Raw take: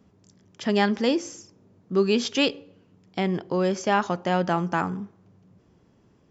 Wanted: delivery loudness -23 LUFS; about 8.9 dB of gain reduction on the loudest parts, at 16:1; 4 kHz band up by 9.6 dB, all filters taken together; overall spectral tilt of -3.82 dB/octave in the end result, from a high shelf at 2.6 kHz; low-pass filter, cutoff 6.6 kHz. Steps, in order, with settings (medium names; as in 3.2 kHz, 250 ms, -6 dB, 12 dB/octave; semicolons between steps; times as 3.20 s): low-pass 6.6 kHz; treble shelf 2.6 kHz +7 dB; peaking EQ 4 kHz +7.5 dB; compression 16:1, threshold -20 dBFS; trim +3.5 dB